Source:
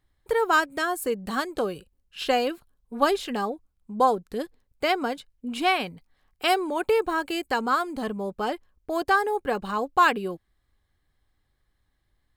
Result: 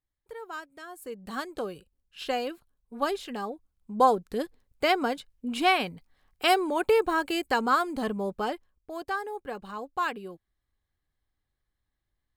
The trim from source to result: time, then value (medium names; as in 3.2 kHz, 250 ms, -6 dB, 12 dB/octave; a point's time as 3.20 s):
0.82 s -18 dB
1.36 s -6.5 dB
3.40 s -6.5 dB
4.04 s 0 dB
8.33 s 0 dB
8.90 s -10 dB